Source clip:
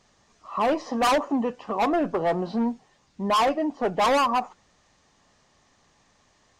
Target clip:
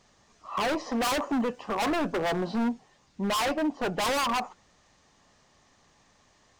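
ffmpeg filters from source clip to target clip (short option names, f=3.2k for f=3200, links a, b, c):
-filter_complex "[0:a]asettb=1/sr,asplit=3[a][b][c];[a]atrim=end=1.154[d];[b]atrim=start=1.15:end=2.64,asetpts=PTS-STARTPTS,afade=t=in:d=0.004:c=qsin,afade=t=out:st=1.486:d=0.004:c=qsin,highshelf=f=11k:g=12[e];[c]atrim=start=2.636[f];[d][e]acrossfade=d=0.004:c1=hsin:c2=qsin[g];[g][f]acrossfade=d=0.004:c1=qsin:c2=hsin,aeval=exprs='0.0794*(abs(mod(val(0)/0.0794+3,4)-2)-1)':c=same"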